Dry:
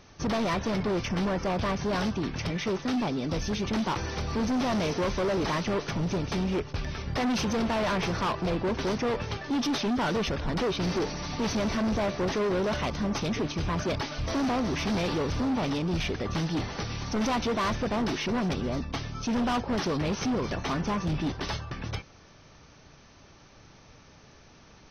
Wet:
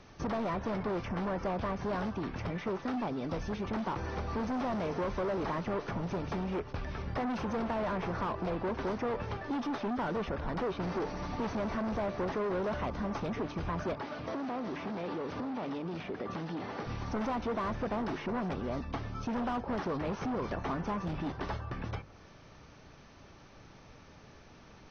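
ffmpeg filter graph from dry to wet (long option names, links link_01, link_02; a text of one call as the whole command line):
ffmpeg -i in.wav -filter_complex "[0:a]asettb=1/sr,asplit=3[link_01][link_02][link_03];[link_01]atrim=end=13.934[link_04];[link_02]atrim=start=13.93:end=16.87,asetpts=PTS-STARTPTS,afade=type=in:duration=0.004:curve=qsin,afade=type=out:start_time=2.936:duration=0.004:curve=qsin,aeval=exprs='val(0)+0.00631*(sin(2*PI*60*n/s)+sin(2*PI*2*60*n/s)/2+sin(2*PI*3*60*n/s)/3+sin(2*PI*4*60*n/s)/4+sin(2*PI*5*60*n/s)/5)':channel_layout=same,highpass=210,lowpass=5500,acompressor=threshold=-31dB:ratio=6:attack=3.2:release=140:knee=1:detection=peak[link_05];[link_03]atrim=start=16.866[link_06];[link_04][link_05]acrossfade=duration=0.004:curve1=hsin:curve2=qsin[link_07];[link_07][link_06]acrossfade=duration=0.004:curve1=qsin:curve2=hsin,lowpass=frequency=3000:poles=1,bandreject=frequency=50:width_type=h:width=6,bandreject=frequency=100:width_type=h:width=6,bandreject=frequency=150:width_type=h:width=6,acrossover=split=590|1700[link_08][link_09][link_10];[link_08]acompressor=threshold=-35dB:ratio=4[link_11];[link_09]acompressor=threshold=-35dB:ratio=4[link_12];[link_10]acompressor=threshold=-54dB:ratio=4[link_13];[link_11][link_12][link_13]amix=inputs=3:normalize=0" out.wav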